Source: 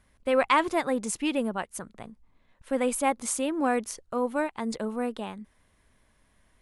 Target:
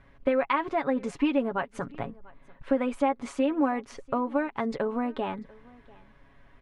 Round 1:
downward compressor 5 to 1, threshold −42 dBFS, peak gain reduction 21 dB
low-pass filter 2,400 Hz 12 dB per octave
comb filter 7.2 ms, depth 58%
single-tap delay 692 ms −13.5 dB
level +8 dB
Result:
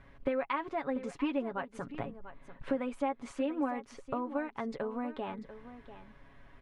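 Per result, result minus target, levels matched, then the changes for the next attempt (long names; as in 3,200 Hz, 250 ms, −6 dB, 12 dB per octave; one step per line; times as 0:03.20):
downward compressor: peak gain reduction +7.5 dB; echo-to-direct +10.5 dB
change: downward compressor 5 to 1, threshold −32.5 dBFS, peak gain reduction 13.5 dB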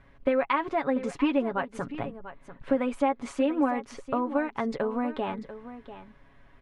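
echo-to-direct +10.5 dB
change: single-tap delay 692 ms −24 dB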